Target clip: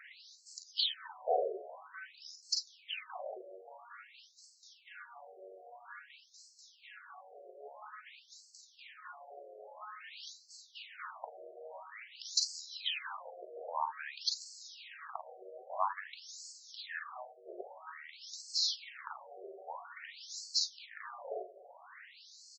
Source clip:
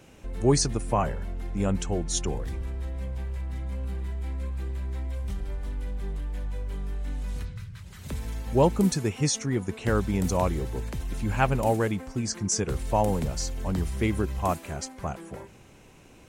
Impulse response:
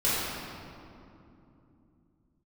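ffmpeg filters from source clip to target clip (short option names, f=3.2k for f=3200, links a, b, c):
-af "equalizer=f=280:t=o:w=1.7:g=-13,asetrate=31796,aresample=44100,aecho=1:1:40|51:0.501|0.376,acompressor=threshold=-34dB:ratio=6,afftfilt=real='re*between(b*sr/1024,500*pow(5900/500,0.5+0.5*sin(2*PI*0.5*pts/sr))/1.41,500*pow(5900/500,0.5+0.5*sin(2*PI*0.5*pts/sr))*1.41)':imag='im*between(b*sr/1024,500*pow(5900/500,0.5+0.5*sin(2*PI*0.5*pts/sr))/1.41,500*pow(5900/500,0.5+0.5*sin(2*PI*0.5*pts/sr))*1.41)':win_size=1024:overlap=0.75,volume=9dB"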